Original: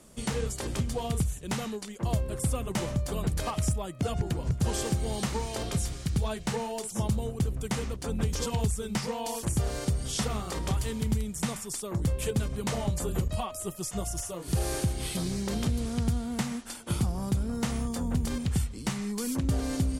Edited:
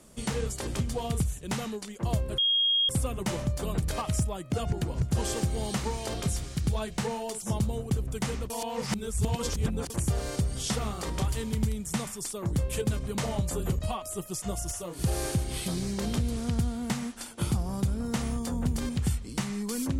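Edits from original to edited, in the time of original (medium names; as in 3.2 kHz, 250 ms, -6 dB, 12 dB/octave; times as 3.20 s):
2.38 s: add tone 3.26 kHz -21.5 dBFS 0.51 s
7.99–9.39 s: reverse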